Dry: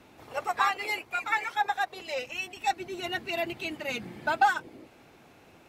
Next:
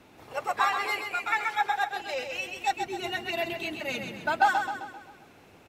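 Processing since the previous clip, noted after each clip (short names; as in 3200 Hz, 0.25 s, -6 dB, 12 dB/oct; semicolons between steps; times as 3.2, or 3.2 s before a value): feedback echo 0.131 s, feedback 48%, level -6.5 dB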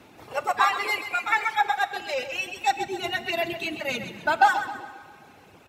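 reverb removal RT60 0.9 s; HPF 55 Hz; Schroeder reverb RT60 2 s, combs from 26 ms, DRR 14 dB; gain +4.5 dB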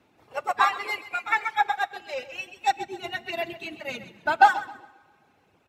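high shelf 5700 Hz -5 dB; upward expander 1.5:1, over -43 dBFS; gain +3 dB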